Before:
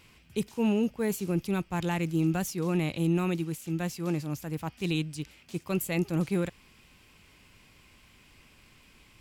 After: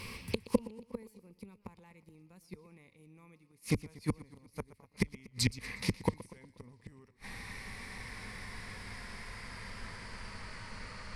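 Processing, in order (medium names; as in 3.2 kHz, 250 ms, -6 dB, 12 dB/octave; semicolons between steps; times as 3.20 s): gliding tape speed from 107% -> 58%; inverted gate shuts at -25 dBFS, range -40 dB; rippled EQ curve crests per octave 0.9, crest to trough 10 dB; modulated delay 120 ms, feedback 55%, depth 106 cents, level -18 dB; trim +11.5 dB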